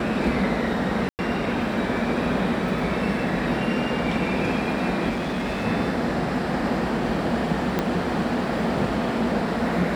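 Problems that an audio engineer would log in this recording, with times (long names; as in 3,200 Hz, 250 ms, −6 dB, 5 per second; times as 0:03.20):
0:01.09–0:01.19: drop-out 99 ms
0:05.09–0:05.66: clipping −23 dBFS
0:07.79: click −9 dBFS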